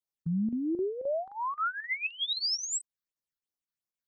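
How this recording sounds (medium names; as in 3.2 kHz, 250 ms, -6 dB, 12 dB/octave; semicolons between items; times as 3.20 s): chopped level 3.8 Hz, depth 65%, duty 85%; phasing stages 6, 2.9 Hz, lowest notch 650–3100 Hz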